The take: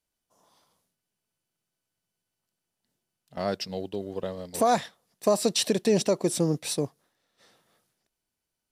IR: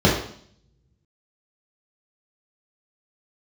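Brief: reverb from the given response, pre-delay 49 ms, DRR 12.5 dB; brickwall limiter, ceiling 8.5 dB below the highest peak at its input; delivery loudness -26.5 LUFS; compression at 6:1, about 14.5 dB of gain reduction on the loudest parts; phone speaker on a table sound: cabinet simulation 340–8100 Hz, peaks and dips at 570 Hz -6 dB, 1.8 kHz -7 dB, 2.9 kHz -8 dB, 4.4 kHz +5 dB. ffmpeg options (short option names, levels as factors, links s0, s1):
-filter_complex "[0:a]acompressor=threshold=0.02:ratio=6,alimiter=level_in=1.78:limit=0.0631:level=0:latency=1,volume=0.562,asplit=2[s0][s1];[1:a]atrim=start_sample=2205,adelay=49[s2];[s1][s2]afir=irnorm=-1:irlink=0,volume=0.02[s3];[s0][s3]amix=inputs=2:normalize=0,highpass=f=340:w=0.5412,highpass=f=340:w=1.3066,equalizer=f=570:t=q:w=4:g=-6,equalizer=f=1800:t=q:w=4:g=-7,equalizer=f=2900:t=q:w=4:g=-8,equalizer=f=4400:t=q:w=4:g=5,lowpass=f=8100:w=0.5412,lowpass=f=8100:w=1.3066,volume=6.68"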